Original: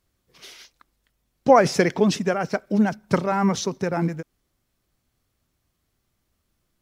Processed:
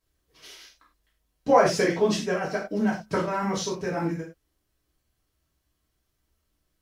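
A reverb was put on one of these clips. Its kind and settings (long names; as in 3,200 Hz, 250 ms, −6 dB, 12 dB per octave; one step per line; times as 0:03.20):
reverb whose tail is shaped and stops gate 130 ms falling, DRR −6.5 dB
level −10 dB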